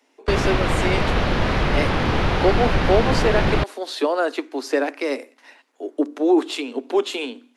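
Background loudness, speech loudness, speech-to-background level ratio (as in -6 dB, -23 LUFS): -21.5 LUFS, -23.5 LUFS, -2.0 dB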